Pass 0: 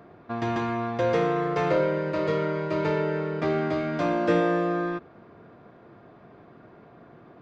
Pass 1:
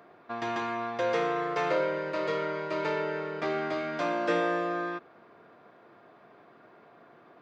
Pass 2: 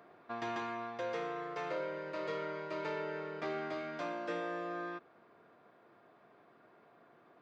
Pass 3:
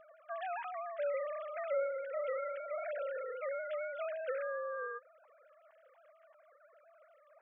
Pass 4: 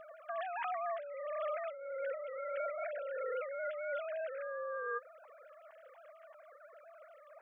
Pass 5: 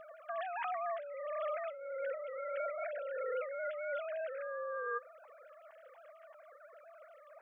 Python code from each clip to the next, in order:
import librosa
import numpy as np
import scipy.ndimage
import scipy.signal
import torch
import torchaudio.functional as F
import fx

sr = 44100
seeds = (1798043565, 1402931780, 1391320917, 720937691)

y1 = fx.highpass(x, sr, hz=680.0, slope=6)
y2 = fx.rider(y1, sr, range_db=5, speed_s=0.5)
y2 = F.gain(torch.from_numpy(y2), -9.0).numpy()
y3 = fx.sine_speech(y2, sr)
y3 = F.gain(torch.from_numpy(y3), 1.0).numpy()
y4 = fx.over_compress(y3, sr, threshold_db=-43.0, ratio=-1.0)
y4 = F.gain(torch.from_numpy(y4), 3.0).numpy()
y5 = fx.comb_fb(y4, sr, f0_hz=170.0, decay_s=0.32, harmonics='odd', damping=0.0, mix_pct=30)
y5 = F.gain(torch.from_numpy(y5), 3.0).numpy()